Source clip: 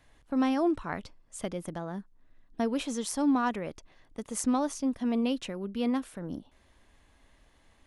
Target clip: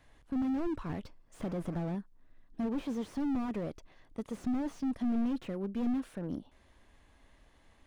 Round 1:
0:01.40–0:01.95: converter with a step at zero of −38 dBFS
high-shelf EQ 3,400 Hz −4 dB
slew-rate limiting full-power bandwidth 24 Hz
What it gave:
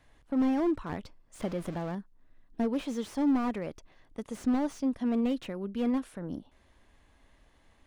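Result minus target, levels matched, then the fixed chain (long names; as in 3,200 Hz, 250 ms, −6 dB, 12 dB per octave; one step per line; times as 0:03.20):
slew-rate limiting: distortion −10 dB
0:01.40–0:01.95: converter with a step at zero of −38 dBFS
high-shelf EQ 3,400 Hz −4 dB
slew-rate limiting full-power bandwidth 9 Hz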